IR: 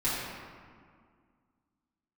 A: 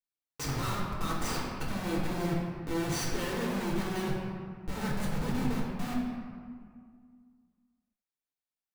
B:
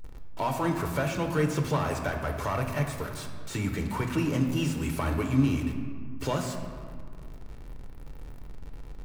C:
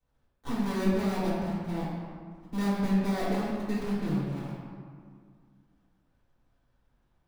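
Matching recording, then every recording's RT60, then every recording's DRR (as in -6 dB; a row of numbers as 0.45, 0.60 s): C; 2.0, 2.0, 2.0 s; -5.0, 3.5, -11.5 dB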